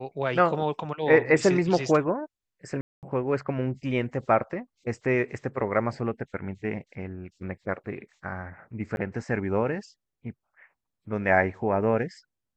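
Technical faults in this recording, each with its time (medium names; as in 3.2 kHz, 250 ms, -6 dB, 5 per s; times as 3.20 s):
2.81–3.03 s: dropout 218 ms
8.96–8.97 s: dropout 11 ms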